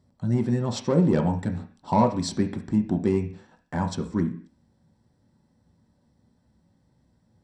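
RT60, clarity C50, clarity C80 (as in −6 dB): 0.45 s, 11.0 dB, 16.0 dB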